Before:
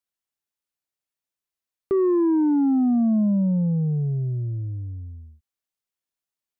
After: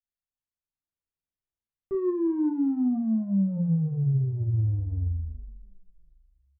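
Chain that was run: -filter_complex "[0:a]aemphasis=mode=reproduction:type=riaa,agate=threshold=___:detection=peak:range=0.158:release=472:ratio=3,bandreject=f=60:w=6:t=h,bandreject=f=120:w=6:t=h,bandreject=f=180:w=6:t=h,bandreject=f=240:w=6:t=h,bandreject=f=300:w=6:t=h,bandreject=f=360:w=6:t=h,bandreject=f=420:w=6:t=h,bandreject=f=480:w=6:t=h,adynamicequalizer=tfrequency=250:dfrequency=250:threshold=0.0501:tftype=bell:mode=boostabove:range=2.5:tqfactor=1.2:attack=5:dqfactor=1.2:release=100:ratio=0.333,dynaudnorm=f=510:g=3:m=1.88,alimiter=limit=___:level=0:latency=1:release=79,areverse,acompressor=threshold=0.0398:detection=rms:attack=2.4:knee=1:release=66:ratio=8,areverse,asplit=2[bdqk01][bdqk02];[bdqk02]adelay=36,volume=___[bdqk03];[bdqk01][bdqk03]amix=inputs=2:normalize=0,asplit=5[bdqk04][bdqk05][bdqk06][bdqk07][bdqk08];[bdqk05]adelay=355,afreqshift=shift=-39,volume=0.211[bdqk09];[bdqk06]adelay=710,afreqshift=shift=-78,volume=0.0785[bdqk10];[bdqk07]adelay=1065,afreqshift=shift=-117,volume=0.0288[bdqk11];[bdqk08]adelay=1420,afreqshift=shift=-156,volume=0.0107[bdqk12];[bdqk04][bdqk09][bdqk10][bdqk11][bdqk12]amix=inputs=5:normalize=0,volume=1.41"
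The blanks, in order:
0.251, 0.237, 0.422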